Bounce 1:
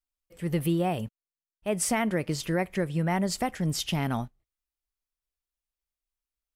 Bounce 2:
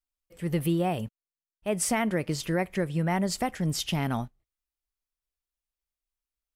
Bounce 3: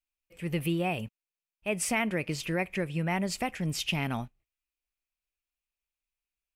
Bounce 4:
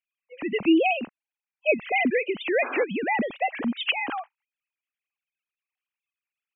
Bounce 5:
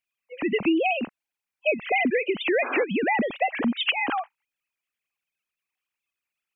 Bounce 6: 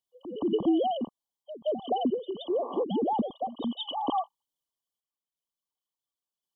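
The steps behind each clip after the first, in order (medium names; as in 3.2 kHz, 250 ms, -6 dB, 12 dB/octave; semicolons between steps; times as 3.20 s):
no audible change
peaking EQ 2.5 kHz +12 dB 0.45 oct; trim -3.5 dB
formants replaced by sine waves; painted sound noise, 2.62–2.84 s, 240–1700 Hz -40 dBFS; trim +6 dB
compression, threshold -24 dBFS, peak gain reduction 9 dB; trim +4.5 dB
brick-wall FIR band-stop 1.2–2.9 kHz; pre-echo 173 ms -13 dB; random-step tremolo 2.8 Hz, depth 65%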